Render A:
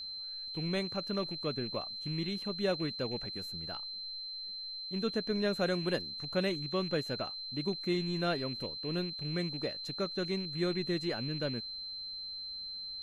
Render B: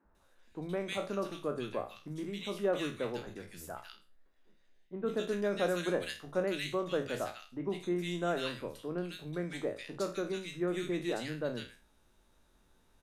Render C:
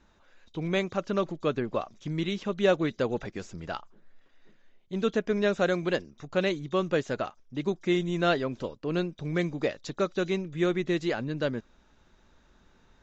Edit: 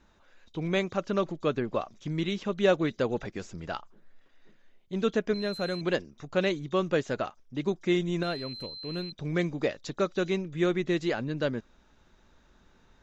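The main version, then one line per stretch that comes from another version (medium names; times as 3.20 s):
C
5.34–5.81 s: from A
8.23–9.12 s: from A
not used: B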